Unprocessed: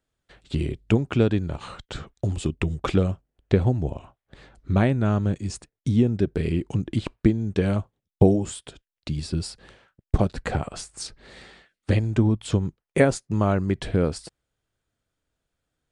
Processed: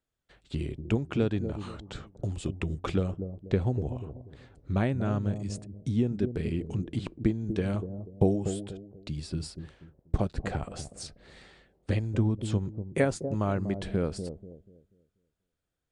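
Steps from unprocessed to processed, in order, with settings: analogue delay 0.242 s, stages 1024, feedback 32%, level -8.5 dB; gain -7 dB

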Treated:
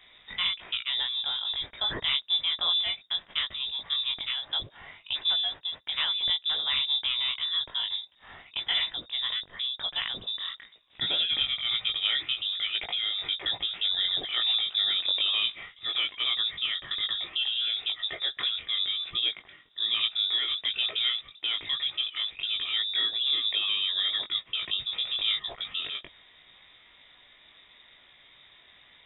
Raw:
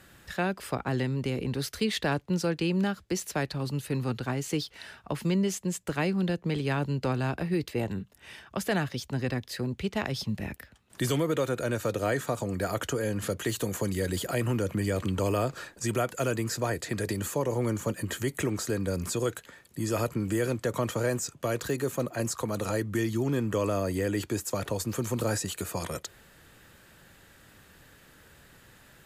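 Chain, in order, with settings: chorus 1.1 Hz, delay 17 ms, depth 4.7 ms; inverted band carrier 3700 Hz; gain +2.5 dB

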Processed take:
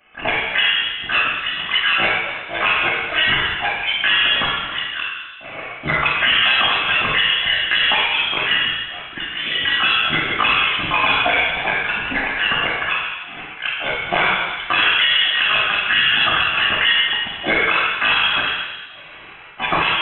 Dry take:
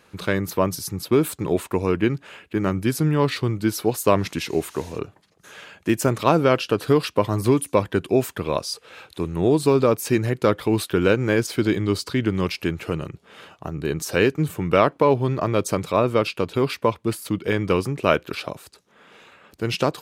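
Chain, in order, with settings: HPF 870 Hz 24 dB/oct; high shelf 2700 Hz -3 dB; AGC gain up to 4.5 dB; envelope flanger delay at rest 4.8 ms, full sweep at -20.5 dBFS; transient shaper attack +8 dB, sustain -11 dB; harmoniser +12 st -1 dB; shoebox room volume 1800 m³, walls mixed, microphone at 4.4 m; inverted band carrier 3900 Hz; maximiser +7.5 dB; gain -5.5 dB

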